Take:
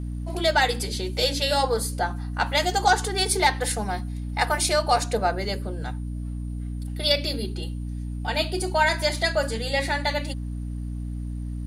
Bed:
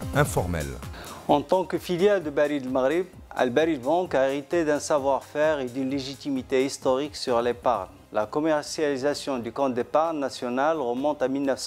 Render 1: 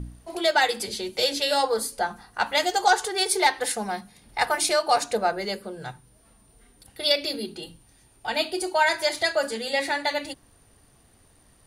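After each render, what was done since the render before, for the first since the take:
hum removal 60 Hz, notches 5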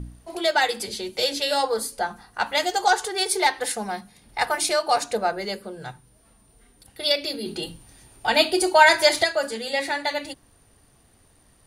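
0:07.46–0:09.24: clip gain +7 dB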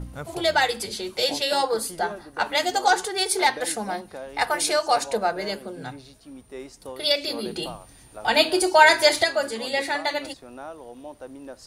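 mix in bed −15 dB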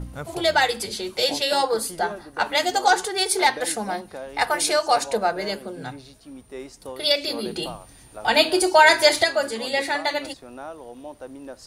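level +1.5 dB
brickwall limiter −3 dBFS, peak gain reduction 3 dB

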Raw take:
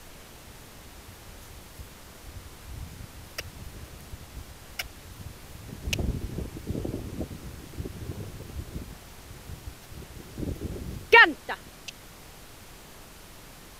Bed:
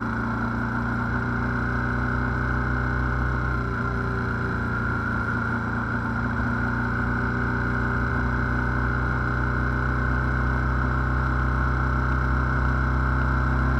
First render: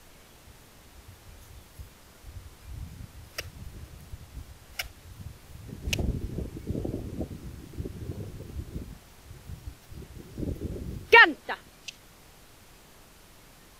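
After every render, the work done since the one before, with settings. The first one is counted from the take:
noise reduction from a noise print 6 dB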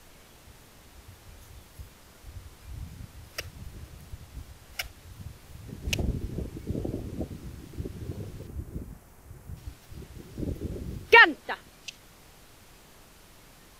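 0:08.47–0:09.57: parametric band 3,700 Hz −10.5 dB 1.5 octaves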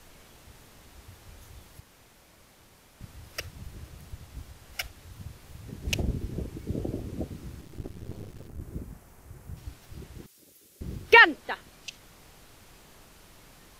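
0:01.80–0:03.01: fill with room tone
0:07.61–0:08.61: gain on one half-wave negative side −12 dB
0:10.26–0:10.81: first difference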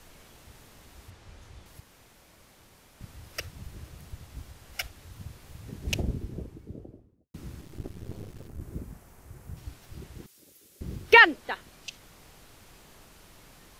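0:01.10–0:01.66: high-frequency loss of the air 53 metres
0:05.75–0:07.34: fade out and dull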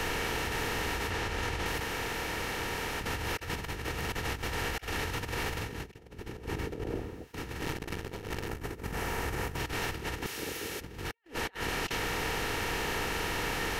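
compressor on every frequency bin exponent 0.6
compressor whose output falls as the input rises −37 dBFS, ratio −0.5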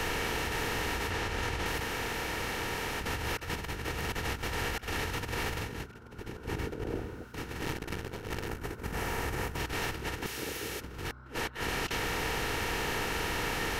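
mix in bed −27.5 dB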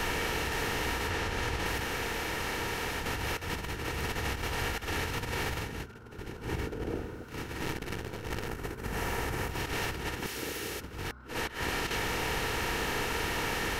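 backwards echo 59 ms −7.5 dB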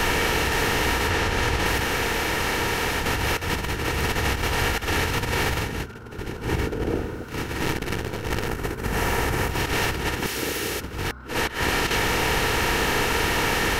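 level +9.5 dB

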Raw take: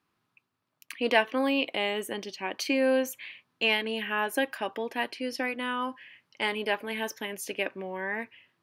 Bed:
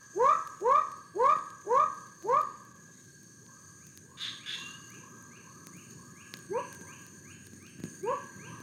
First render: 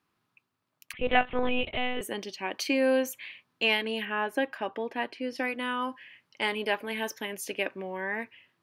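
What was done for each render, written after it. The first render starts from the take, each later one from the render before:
0:00.93–0:02.01: one-pitch LPC vocoder at 8 kHz 250 Hz
0:04.05–0:05.36: low-pass filter 2,200 Hz 6 dB per octave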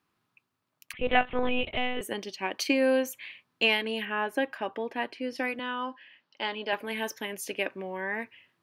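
0:01.73–0:03.71: transient designer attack +3 dB, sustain −1 dB
0:05.59–0:06.73: loudspeaker in its box 250–5,000 Hz, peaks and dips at 410 Hz −5 dB, 1,200 Hz −3 dB, 2,200 Hz −8 dB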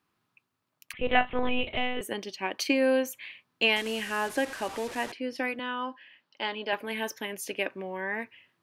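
0:00.93–0:01.83: double-tracking delay 35 ms −13.5 dB
0:03.76–0:05.12: linear delta modulator 64 kbit/s, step −34.5 dBFS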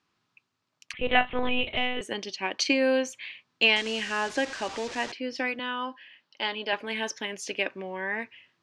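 low-pass filter 6,600 Hz 24 dB per octave
high-shelf EQ 3,200 Hz +8.5 dB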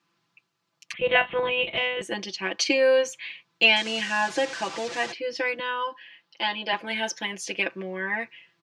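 high-pass filter 86 Hz
comb filter 5.9 ms, depth 99%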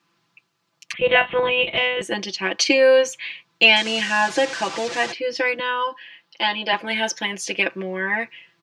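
level +5.5 dB
brickwall limiter −3 dBFS, peak gain reduction 2.5 dB

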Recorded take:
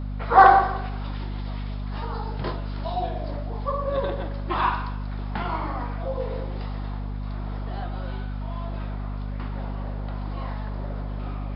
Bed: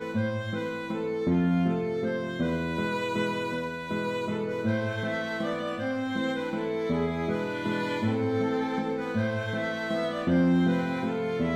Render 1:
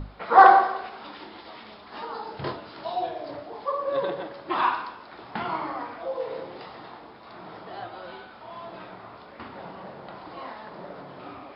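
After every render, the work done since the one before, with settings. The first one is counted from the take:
mains-hum notches 50/100/150/200/250 Hz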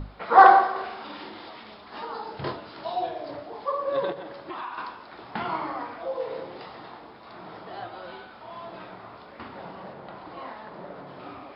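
0:00.71–0:01.49: double-tracking delay 47 ms −2 dB
0:04.12–0:04.78: downward compressor 4 to 1, threshold −34 dBFS
0:09.93–0:11.07: high-frequency loss of the air 95 metres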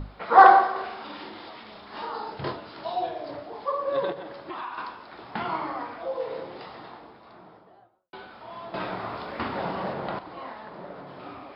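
0:01.71–0:02.34: double-tracking delay 40 ms −4 dB
0:06.74–0:08.13: fade out and dull
0:08.74–0:10.19: clip gain +10 dB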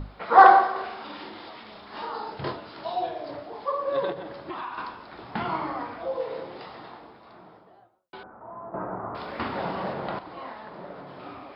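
0:04.12–0:06.22: low-shelf EQ 210 Hz +7 dB
0:08.23–0:09.15: inverse Chebyshev low-pass filter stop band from 3,400 Hz, stop band 50 dB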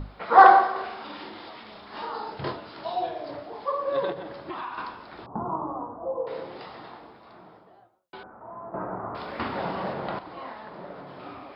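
0:05.26–0:06.27: elliptic low-pass filter 1,100 Hz, stop band 60 dB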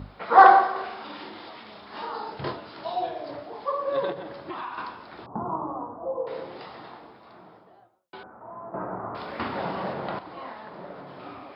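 high-pass filter 62 Hz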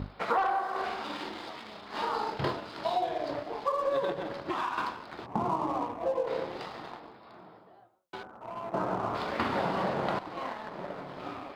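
leveller curve on the samples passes 1
downward compressor 16 to 1, threshold −25 dBFS, peak gain reduction 19.5 dB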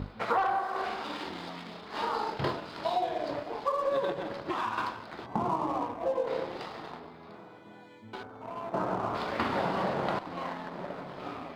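mix in bed −23.5 dB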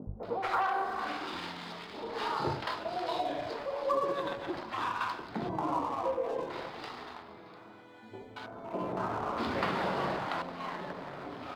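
three-band delay without the direct sound mids, lows, highs 70/230 ms, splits 180/670 Hz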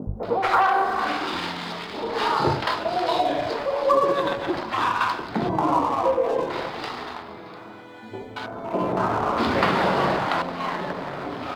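level +11 dB

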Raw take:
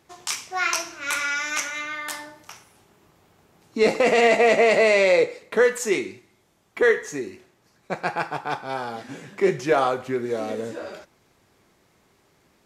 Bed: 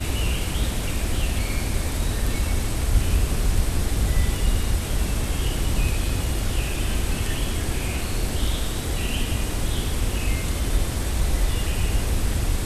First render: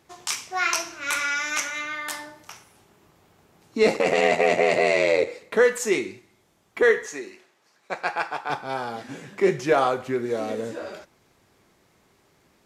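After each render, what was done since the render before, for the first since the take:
0:03.96–0:05.27: ring modulation 42 Hz
0:07.06–0:08.50: meter weighting curve A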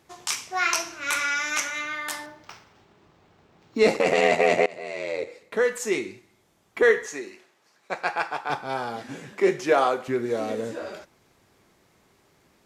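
0:02.26–0:03.79: linearly interpolated sample-rate reduction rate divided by 4×
0:04.66–0:07.16: fade in equal-power, from −23.5 dB
0:09.32–0:10.08: high-pass filter 230 Hz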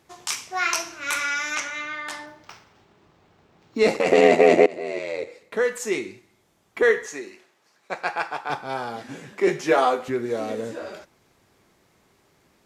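0:01.55–0:02.27: high-frequency loss of the air 63 metres
0:04.12–0:04.99: parametric band 320 Hz +14 dB 1 octave
0:09.46–0:10.10: double-tracking delay 12 ms −2 dB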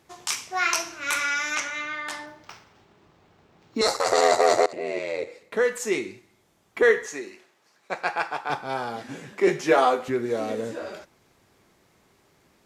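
0:03.81–0:04.73: drawn EQ curve 110 Hz 0 dB, 190 Hz −21 dB, 1,300 Hz +10 dB, 2,600 Hz −14 dB, 4,100 Hz +9 dB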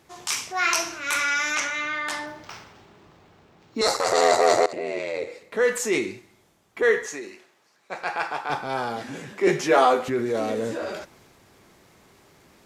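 speech leveller 2 s
transient designer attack −4 dB, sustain +3 dB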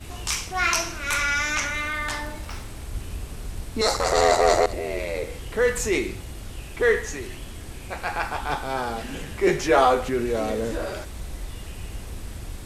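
mix in bed −12.5 dB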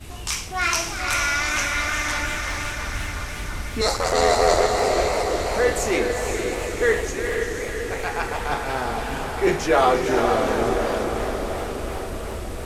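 on a send: feedback delay with all-pass diffusion 497 ms, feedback 62%, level −4.5 dB
on the sum: feedback echo with a swinging delay time 350 ms, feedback 68%, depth 206 cents, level −11.5 dB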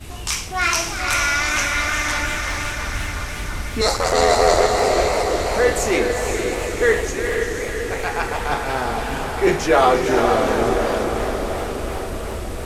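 level +3 dB
brickwall limiter −3 dBFS, peak gain reduction 1.5 dB

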